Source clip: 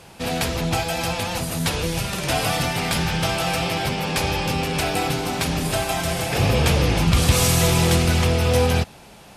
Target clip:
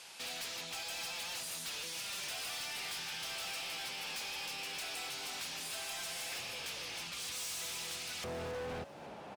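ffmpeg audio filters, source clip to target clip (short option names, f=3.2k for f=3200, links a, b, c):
-filter_complex "[0:a]acompressor=threshold=-29dB:ratio=4,asetnsamples=n=441:p=0,asendcmd='8.24 bandpass f 620',bandpass=f=5.3k:t=q:w=0.59:csg=0,asoftclip=type=hard:threshold=-39dB,asplit=6[a][b][c][d][e][f];[b]adelay=273,afreqshift=62,volume=-16dB[g];[c]adelay=546,afreqshift=124,volume=-21.7dB[h];[d]adelay=819,afreqshift=186,volume=-27.4dB[i];[e]adelay=1092,afreqshift=248,volume=-33dB[j];[f]adelay=1365,afreqshift=310,volume=-38.7dB[k];[a][g][h][i][j][k]amix=inputs=6:normalize=0"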